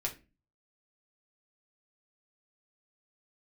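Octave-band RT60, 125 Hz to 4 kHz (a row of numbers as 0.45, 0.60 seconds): 0.55, 0.50, 0.35, 0.25, 0.30, 0.25 seconds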